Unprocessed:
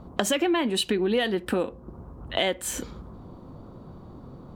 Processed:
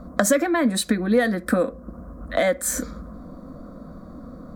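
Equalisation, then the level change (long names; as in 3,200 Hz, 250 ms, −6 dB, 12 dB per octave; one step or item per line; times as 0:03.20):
phaser with its sweep stopped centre 580 Hz, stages 8
+8.0 dB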